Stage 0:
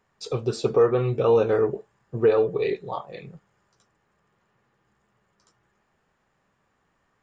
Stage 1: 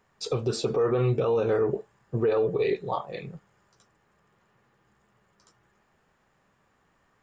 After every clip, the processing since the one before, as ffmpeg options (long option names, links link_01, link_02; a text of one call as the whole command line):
ffmpeg -i in.wav -af "alimiter=limit=-19.5dB:level=0:latency=1:release=60,volume=2.5dB" out.wav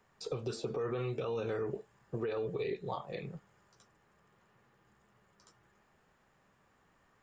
ffmpeg -i in.wav -filter_complex "[0:a]acrossover=split=280|1600[link_01][link_02][link_03];[link_01]acompressor=threshold=-40dB:ratio=4[link_04];[link_02]acompressor=threshold=-36dB:ratio=4[link_05];[link_03]acompressor=threshold=-46dB:ratio=4[link_06];[link_04][link_05][link_06]amix=inputs=3:normalize=0,volume=-2dB" out.wav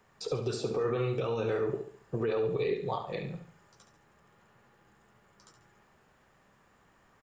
ffmpeg -i in.wav -af "aecho=1:1:70|140|210|280:0.376|0.147|0.0572|0.0223,volume=4.5dB" out.wav